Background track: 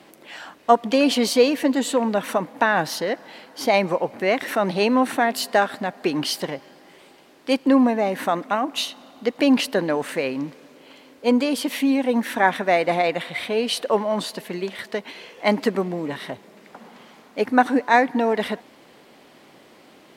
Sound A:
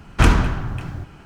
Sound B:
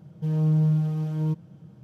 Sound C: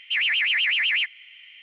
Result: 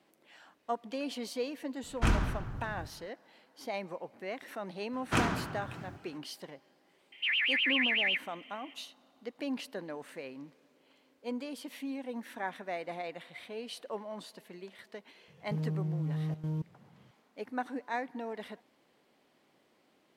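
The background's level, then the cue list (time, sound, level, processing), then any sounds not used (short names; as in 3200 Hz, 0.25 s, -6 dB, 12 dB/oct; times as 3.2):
background track -19 dB
1.83 add A -13.5 dB
4.93 add A -10 dB + HPF 160 Hz
7.12 add C -7 dB
15.28 add B -5 dB + level quantiser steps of 14 dB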